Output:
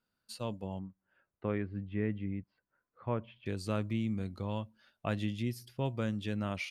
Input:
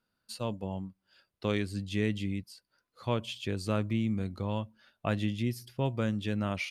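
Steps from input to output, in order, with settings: 0.79–3.46 LPF 2000 Hz 24 dB/oct; gain -3.5 dB

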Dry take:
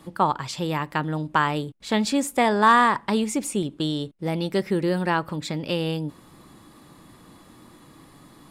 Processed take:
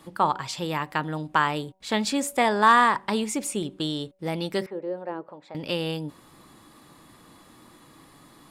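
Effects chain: low shelf 380 Hz -5.5 dB; de-hum 189.5 Hz, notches 5; 4.66–5.55 auto-wah 370–1100 Hz, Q 2.4, down, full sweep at -19 dBFS

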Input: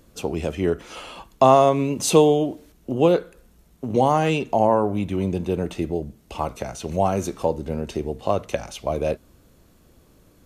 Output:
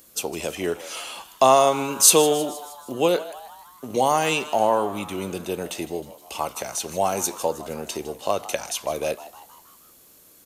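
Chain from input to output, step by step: RIAA curve recording; frequency-shifting echo 0.157 s, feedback 55%, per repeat +140 Hz, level -16.5 dB

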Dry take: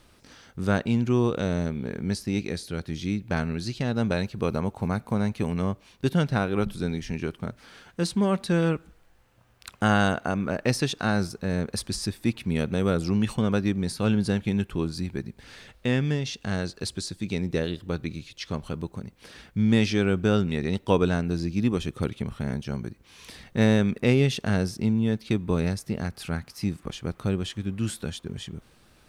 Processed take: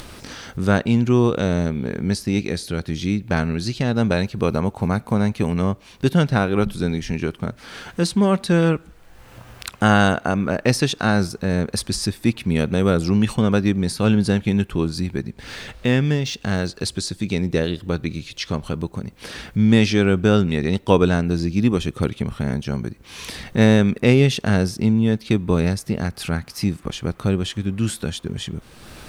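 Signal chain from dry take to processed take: 15.21–16.67 median filter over 3 samples; in parallel at +0.5 dB: upward compressor, threshold -26 dBFS

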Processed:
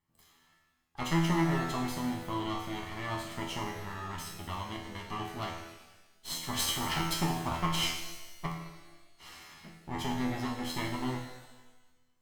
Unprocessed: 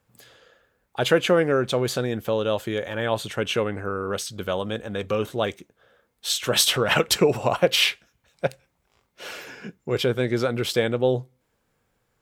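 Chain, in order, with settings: minimum comb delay 0.97 ms; resonator 83 Hz, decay 0.62 s, harmonics all, mix 90%; shimmer reverb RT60 1.1 s, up +12 st, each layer -8 dB, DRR 5 dB

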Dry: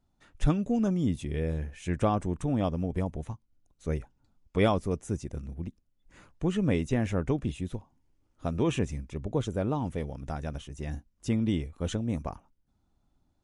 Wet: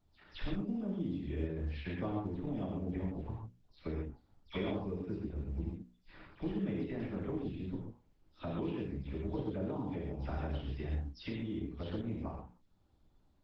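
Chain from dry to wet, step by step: spectral delay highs early, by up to 0.137 s; notches 60/120/180/240/300/360/420/480/540 Hz; dynamic EQ 270 Hz, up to +7 dB, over -42 dBFS, Q 0.96; compressor 5:1, threshold -37 dBFS, peak gain reduction 19 dB; non-linear reverb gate 0.16 s flat, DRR -1.5 dB; downsampling 11025 Hz; gain -2 dB; Opus 12 kbps 48000 Hz

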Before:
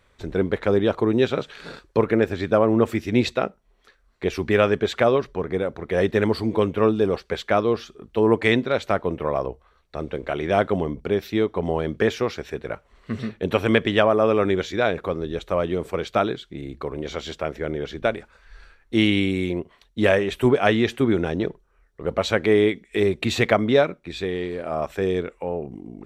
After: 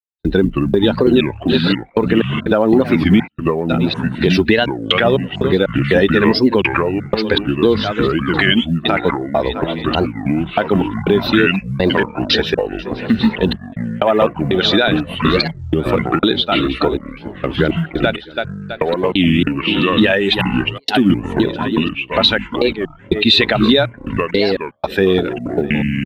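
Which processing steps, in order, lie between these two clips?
per-bin expansion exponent 1.5; notch comb 1100 Hz; feedback echo 0.327 s, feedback 47%, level -19.5 dB; step gate ".x.xx.x.x.xxx." 61 bpm -60 dB; ten-band EQ 125 Hz -10 dB, 250 Hz +4 dB, 500 Hz -6 dB, 4000 Hz +4 dB; compressor 8:1, threshold -36 dBFS, peak gain reduction 19 dB; resonant high shelf 5200 Hz -10 dB, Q 3; short-mantissa float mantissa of 6-bit; echoes that change speed 0.102 s, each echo -5 st, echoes 3, each echo -6 dB; maximiser +28 dB; record warp 33 1/3 rpm, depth 250 cents; gain -1 dB

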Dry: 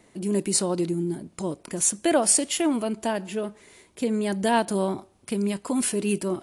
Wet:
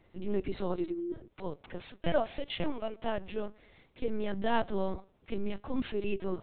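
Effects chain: 0.73–3.05 HPF 290 Hz 24 dB/oct; LPC vocoder at 8 kHz pitch kept; gain -6 dB

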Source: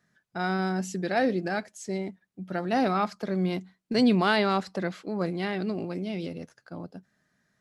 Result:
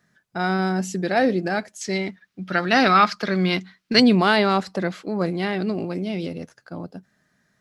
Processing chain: 1.81–4 band shelf 2600 Hz +10 dB 2.6 oct; gain +5.5 dB

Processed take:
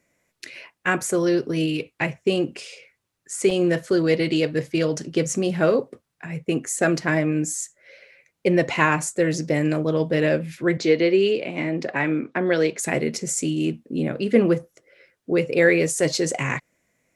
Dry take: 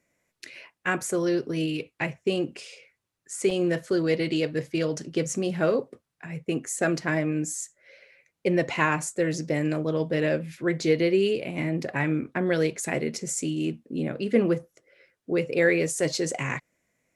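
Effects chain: 10.77–12.79 three-band isolator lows -13 dB, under 190 Hz, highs -22 dB, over 7200 Hz; gain +4.5 dB

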